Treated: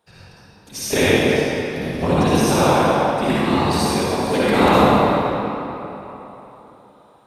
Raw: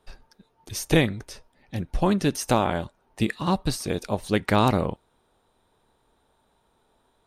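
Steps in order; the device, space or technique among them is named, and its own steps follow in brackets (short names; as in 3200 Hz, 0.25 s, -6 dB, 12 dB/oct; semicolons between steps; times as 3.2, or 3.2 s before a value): whispering ghost (whisperiser; HPF 200 Hz 6 dB/oct; reverb RT60 3.5 s, pre-delay 49 ms, DRR -10.5 dB); gain -1 dB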